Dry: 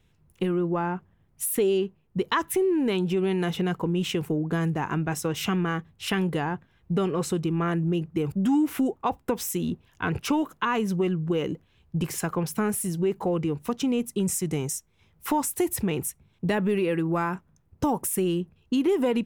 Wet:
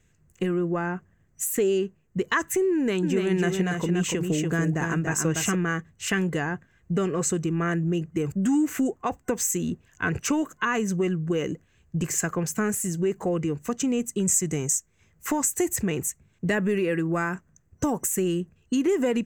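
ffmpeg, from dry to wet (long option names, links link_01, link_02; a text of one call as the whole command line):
ffmpeg -i in.wav -filter_complex "[0:a]asettb=1/sr,asplit=3[link_01][link_02][link_03];[link_01]atrim=end=2.744[link_04];[link_02]atrim=start=2.74:end=5.55,asetpts=PTS-STARTPTS,afade=type=in:duration=0.004:curve=qsin,afade=type=out:start_time=2.806:duration=0.004:curve=qsin,aecho=1:1:288:0.596,atrim=end_sample=123921[link_05];[link_03]atrim=start=5.546[link_06];[link_04][link_05]acrossfade=duration=0.004:curve1=hsin:curve2=qsin[link_07];[link_07][link_06]acrossfade=duration=0.004:curve1=qsin:curve2=hsin,superequalizer=9b=0.562:11b=1.78:13b=0.562:15b=3.55:16b=0.708" out.wav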